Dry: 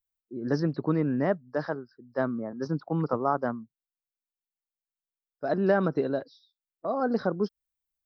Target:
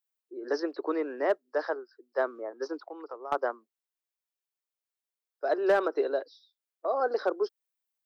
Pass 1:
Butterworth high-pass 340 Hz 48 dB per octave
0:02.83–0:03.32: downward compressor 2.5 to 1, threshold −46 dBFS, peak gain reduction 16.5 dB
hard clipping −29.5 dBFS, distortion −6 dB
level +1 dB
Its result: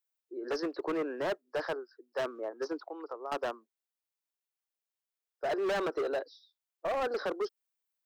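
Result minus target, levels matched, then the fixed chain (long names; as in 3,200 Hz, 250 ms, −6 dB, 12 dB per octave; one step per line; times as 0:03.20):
hard clipping: distortion +16 dB
Butterworth high-pass 340 Hz 48 dB per octave
0:02.83–0:03.32: downward compressor 2.5 to 1, threshold −46 dBFS, peak gain reduction 16.5 dB
hard clipping −18 dBFS, distortion −22 dB
level +1 dB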